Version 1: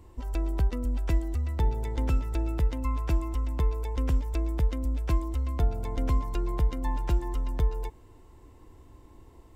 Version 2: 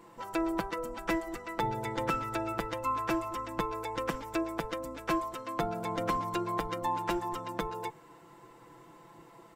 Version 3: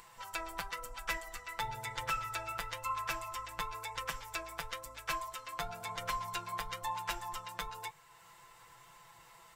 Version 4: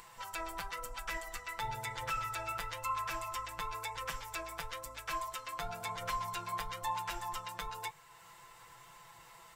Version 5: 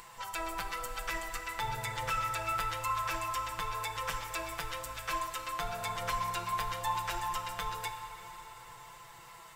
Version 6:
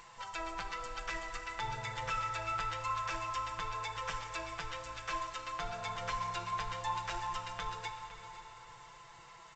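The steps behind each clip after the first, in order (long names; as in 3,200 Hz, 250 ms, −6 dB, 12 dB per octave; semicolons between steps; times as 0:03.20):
gate on every frequency bin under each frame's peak −10 dB weak; parametric band 1,400 Hz +8.5 dB 1.4 octaves; comb filter 6 ms, depth 89%
guitar amp tone stack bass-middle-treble 10-0-10; flanger 1 Hz, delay 6.6 ms, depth 6.4 ms, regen −52%; upward compression, threshold −60 dBFS; level +8 dB
brickwall limiter −28.5 dBFS, peak gain reduction 8.5 dB; level +2 dB
dense smooth reverb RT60 4 s, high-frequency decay 0.8×, DRR 6 dB; level +3 dB
single-tap delay 511 ms −15.5 dB; level −3 dB; G.722 64 kbit/s 16,000 Hz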